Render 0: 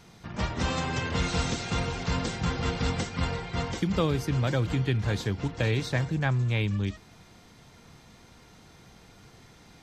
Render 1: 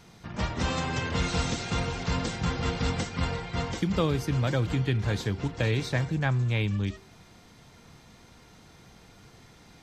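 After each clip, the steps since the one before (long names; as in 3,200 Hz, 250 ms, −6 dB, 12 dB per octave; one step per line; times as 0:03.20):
hum removal 387.7 Hz, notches 32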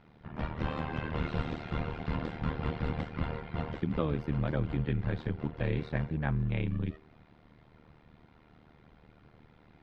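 amplitude modulation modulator 76 Hz, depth 90%
high-frequency loss of the air 430 metres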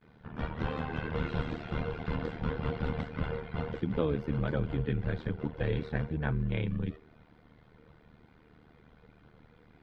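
spectral magnitudes quantised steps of 15 dB
noise gate with hold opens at −51 dBFS
hollow resonant body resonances 460/1,500/3,300 Hz, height 7 dB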